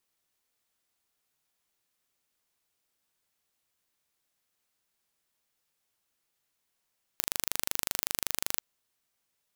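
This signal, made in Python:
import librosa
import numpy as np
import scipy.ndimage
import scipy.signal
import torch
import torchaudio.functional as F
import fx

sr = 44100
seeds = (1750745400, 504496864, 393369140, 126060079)

y = 10.0 ** (-1.5 / 20.0) * (np.mod(np.arange(round(1.39 * sr)), round(sr / 25.3)) == 0)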